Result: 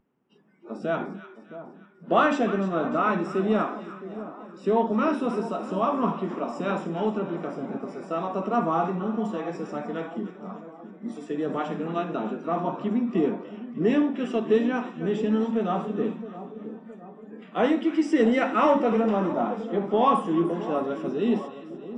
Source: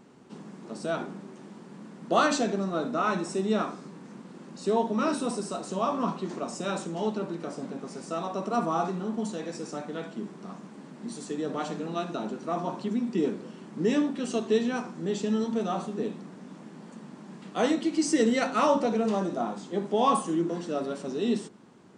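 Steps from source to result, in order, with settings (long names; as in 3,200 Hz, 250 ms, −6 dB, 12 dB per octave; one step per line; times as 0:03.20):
noise reduction from a noise print of the clip's start 23 dB
in parallel at −11 dB: soft clipping −22.5 dBFS, distortion −13 dB
on the sum: Savitzky-Golay smoothing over 25 samples
echo with a time of its own for lows and highs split 1,100 Hz, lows 666 ms, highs 299 ms, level −13 dB
level +1.5 dB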